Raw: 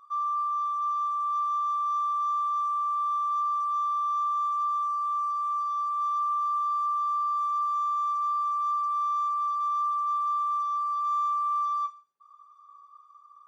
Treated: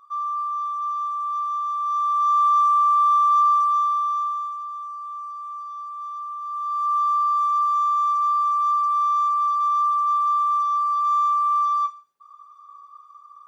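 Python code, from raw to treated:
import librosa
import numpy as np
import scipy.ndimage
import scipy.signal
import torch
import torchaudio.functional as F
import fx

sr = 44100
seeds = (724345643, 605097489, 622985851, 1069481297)

y = fx.gain(x, sr, db=fx.line((1.74, 2.0), (2.46, 10.5), (3.5, 10.5), (4.27, 2.5), (4.63, -5.0), (6.4, -5.0), (6.96, 7.0)))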